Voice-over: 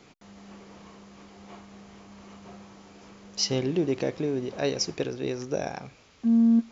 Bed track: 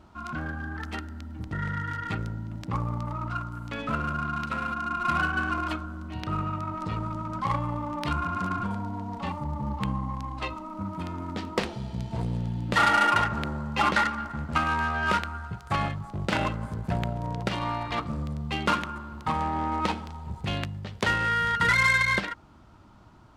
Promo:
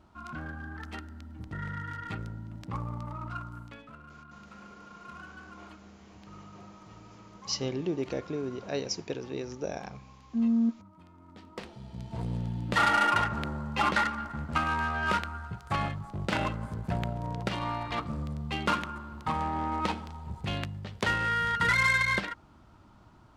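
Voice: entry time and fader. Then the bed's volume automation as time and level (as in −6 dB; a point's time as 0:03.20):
4.10 s, −5.5 dB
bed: 0:03.60 −6 dB
0:03.91 −21 dB
0:11.13 −21 dB
0:12.32 −3 dB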